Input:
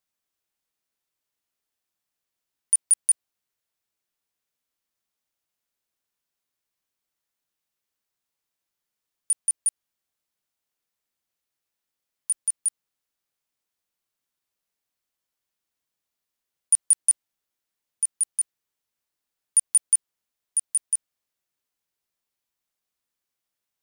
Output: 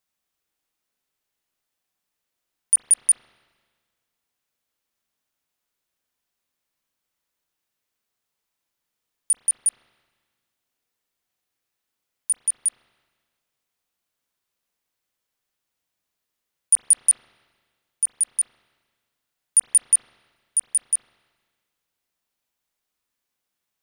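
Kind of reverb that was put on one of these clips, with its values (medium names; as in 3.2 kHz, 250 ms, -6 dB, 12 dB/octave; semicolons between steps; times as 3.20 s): spring tank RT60 1.6 s, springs 39/43 ms, chirp 25 ms, DRR 2.5 dB; trim +2.5 dB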